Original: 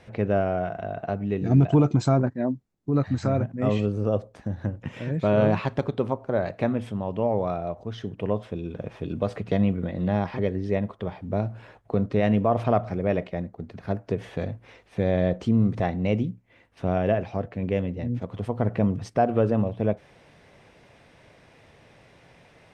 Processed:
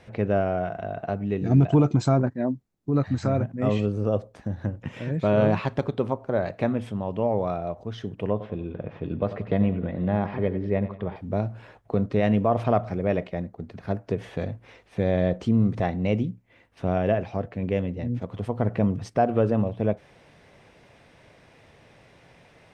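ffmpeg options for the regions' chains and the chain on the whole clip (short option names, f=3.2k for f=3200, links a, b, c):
-filter_complex "[0:a]asettb=1/sr,asplit=3[a][b][c];[a]atrim=end=8.314[d];[b]atrim=start=8.31:end=11.16,asetpts=PTS-STARTPTS,afade=t=in:d=0.004:c=qsin,afade=t=out:st=2.846:d=0.004:c=qsin,lowpass=2.7k,aecho=1:1:92|184|276|368:0.224|0.0963|0.0414|0.0178,atrim=end_sample=125685[e];[c]atrim=start=11.156[f];[d][e]acrossfade=d=0.004:c1=hsin:c2=qsin[g];[g][f]acrossfade=d=0.004:c1=qsin:c2=hsin"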